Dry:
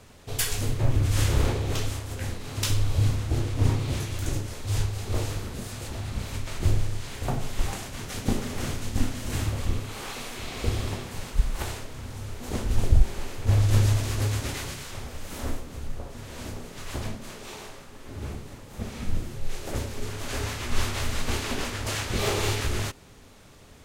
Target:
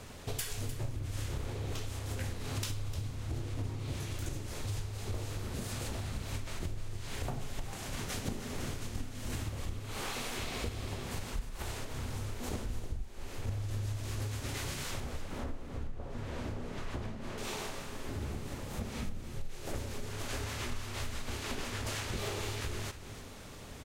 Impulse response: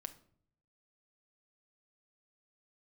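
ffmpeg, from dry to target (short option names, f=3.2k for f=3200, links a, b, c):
-filter_complex "[0:a]acompressor=threshold=-37dB:ratio=10,asettb=1/sr,asplit=3[a][b][c];[a]atrim=end=15.004[d];[b]atrim=start=15:end=17.38,asetpts=PTS-STARTPTS,afade=t=in:d=0.004:c=qsin,afade=t=out:st=2.376:d=0.004:c=qsin,lowpass=f=1.8k:p=1[e];[c]atrim=start=17.376[f];[d][e]acrossfade=d=0.004:c1=hsin:c2=qsin[g];[g][f]acrossfade=d=0.004:c1=qsin:c2=hsin,aecho=1:1:303:0.237,volume=3dB"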